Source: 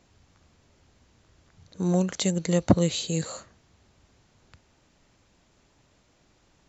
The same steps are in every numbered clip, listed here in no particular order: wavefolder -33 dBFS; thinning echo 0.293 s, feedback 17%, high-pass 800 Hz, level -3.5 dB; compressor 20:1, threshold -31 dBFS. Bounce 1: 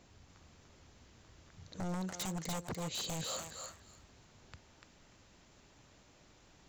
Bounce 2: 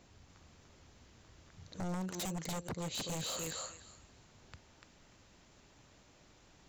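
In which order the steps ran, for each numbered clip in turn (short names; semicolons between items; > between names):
compressor > wavefolder > thinning echo; thinning echo > compressor > wavefolder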